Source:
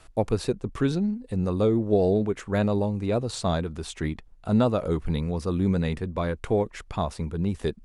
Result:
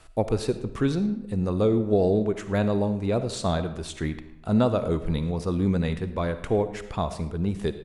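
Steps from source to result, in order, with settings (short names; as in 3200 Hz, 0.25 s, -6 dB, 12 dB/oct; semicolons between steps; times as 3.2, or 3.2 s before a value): outdoor echo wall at 19 m, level -21 dB; digital reverb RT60 0.9 s, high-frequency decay 0.7×, pre-delay 15 ms, DRR 11 dB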